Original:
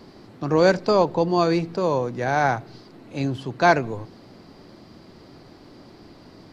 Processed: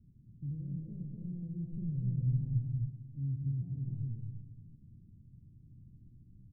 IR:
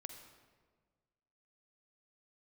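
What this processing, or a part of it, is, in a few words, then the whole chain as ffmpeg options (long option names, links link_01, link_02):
club heard from the street: -filter_complex "[0:a]alimiter=limit=-15.5dB:level=0:latency=1,lowpass=frequency=150:width=0.5412,lowpass=frequency=150:width=1.3066[link_01];[1:a]atrim=start_sample=2205[link_02];[link_01][link_02]afir=irnorm=-1:irlink=0,asettb=1/sr,asplit=3[link_03][link_04][link_05];[link_03]atrim=end=1.724[link_06];[link_04]atrim=start=1.72:end=2.65,asetpts=PTS-STARTPTS,afade=type=in:duration=0.004:curve=qsin,afade=type=out:start_time=0.926:duration=0.004:curve=qsin,lowshelf=frequency=130:gain=12[link_07];[link_05]atrim=start=2.646[link_08];[link_06][link_07]acrossfade=duration=0.004:curve1=hsin:curve2=qsin[link_09];[link_09][link_08]acrossfade=duration=0.004:curve1=qsin:curve2=hsin,aecho=1:1:154.5|253.6:0.282|0.891"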